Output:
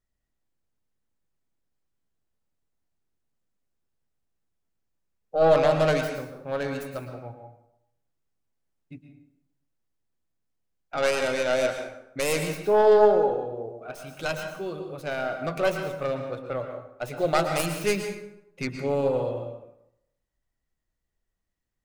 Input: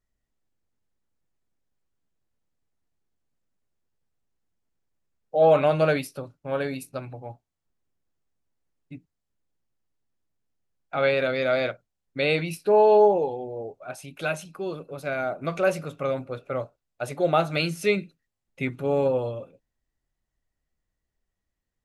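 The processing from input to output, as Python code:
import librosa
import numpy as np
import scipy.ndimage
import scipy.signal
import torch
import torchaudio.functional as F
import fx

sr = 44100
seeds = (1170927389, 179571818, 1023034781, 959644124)

y = fx.tracing_dist(x, sr, depth_ms=0.28)
y = fx.rev_plate(y, sr, seeds[0], rt60_s=0.81, hf_ratio=0.65, predelay_ms=100, drr_db=5.5)
y = y * librosa.db_to_amplitude(-2.0)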